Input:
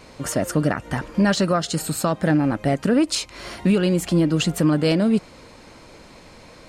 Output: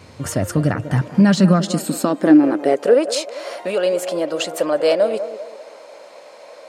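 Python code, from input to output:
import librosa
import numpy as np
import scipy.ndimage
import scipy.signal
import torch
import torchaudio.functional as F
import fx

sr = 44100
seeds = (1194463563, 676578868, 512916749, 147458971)

y = fx.echo_banded(x, sr, ms=195, feedback_pct=45, hz=580.0, wet_db=-10.0)
y = fx.filter_sweep_highpass(y, sr, from_hz=92.0, to_hz=580.0, start_s=0.55, end_s=3.19, q=4.1)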